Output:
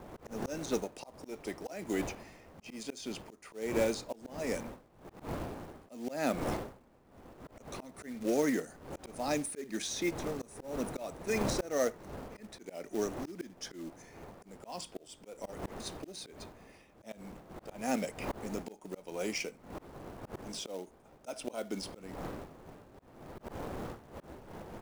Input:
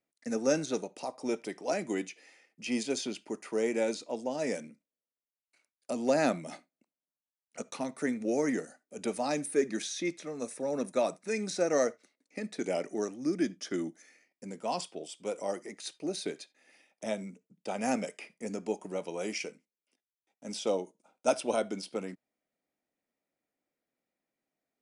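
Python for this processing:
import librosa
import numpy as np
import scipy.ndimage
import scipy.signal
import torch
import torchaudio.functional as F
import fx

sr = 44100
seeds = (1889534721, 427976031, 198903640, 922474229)

y = fx.dmg_wind(x, sr, seeds[0], corner_hz=610.0, level_db=-42.0)
y = fx.quant_float(y, sr, bits=2)
y = fx.auto_swell(y, sr, attack_ms=275.0)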